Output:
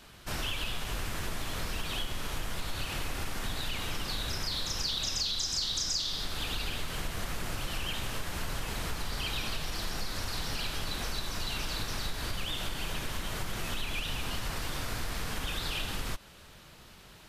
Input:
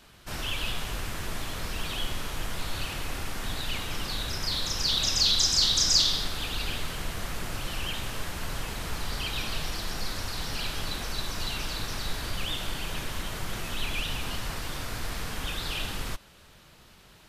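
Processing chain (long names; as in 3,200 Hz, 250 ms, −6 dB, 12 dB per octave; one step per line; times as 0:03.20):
downward compressor 6 to 1, threshold −31 dBFS, peak gain reduction 13 dB
level +1.5 dB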